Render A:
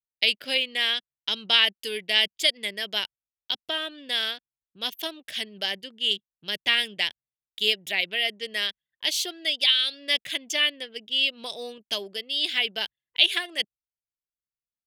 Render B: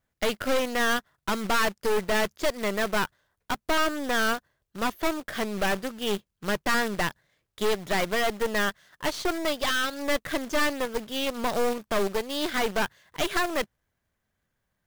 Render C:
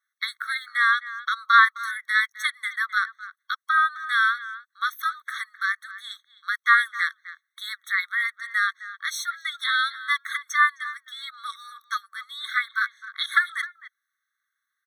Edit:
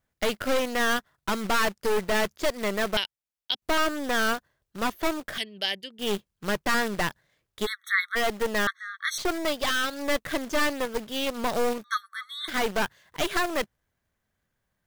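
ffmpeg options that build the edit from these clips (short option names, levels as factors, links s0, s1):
-filter_complex "[0:a]asplit=2[s0][s1];[2:a]asplit=3[s2][s3][s4];[1:a]asplit=6[s5][s6][s7][s8][s9][s10];[s5]atrim=end=2.972[s11];[s0]atrim=start=2.968:end=3.622[s12];[s6]atrim=start=3.618:end=5.382[s13];[s1]atrim=start=5.378:end=5.992[s14];[s7]atrim=start=5.988:end=7.67[s15];[s2]atrim=start=7.65:end=8.17[s16];[s8]atrim=start=8.15:end=8.672[s17];[s3]atrim=start=8.668:end=9.182[s18];[s9]atrim=start=9.178:end=11.842[s19];[s4]atrim=start=11.838:end=12.482[s20];[s10]atrim=start=12.478[s21];[s11][s12]acrossfade=d=0.004:c1=hsin:c2=hsin[s22];[s22][s13]acrossfade=d=0.004:c1=hsin:c2=hsin[s23];[s23][s14]acrossfade=d=0.004:c1=hsin:c2=hsin[s24];[s24][s15]acrossfade=d=0.004:c1=hsin:c2=hsin[s25];[s25][s16]acrossfade=d=0.02:c1=tri:c2=tri[s26];[s26][s17]acrossfade=d=0.02:c1=tri:c2=tri[s27];[s27][s18]acrossfade=d=0.004:c1=hsin:c2=hsin[s28];[s28][s19]acrossfade=d=0.004:c1=hsin:c2=hsin[s29];[s29][s20]acrossfade=d=0.004:c1=hsin:c2=hsin[s30];[s30][s21]acrossfade=d=0.004:c1=hsin:c2=hsin"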